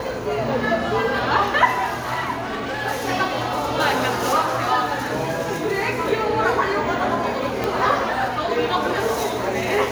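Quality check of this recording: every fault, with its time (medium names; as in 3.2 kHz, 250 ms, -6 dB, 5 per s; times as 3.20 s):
2.33–2.83 s: clipped -23 dBFS
7.64 s: pop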